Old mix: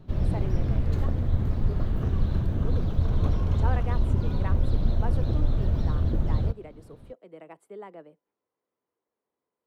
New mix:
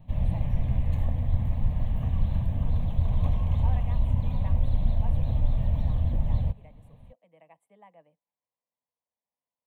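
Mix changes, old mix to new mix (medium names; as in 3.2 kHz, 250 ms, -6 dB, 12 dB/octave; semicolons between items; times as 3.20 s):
speech -7.0 dB; master: add static phaser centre 1.4 kHz, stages 6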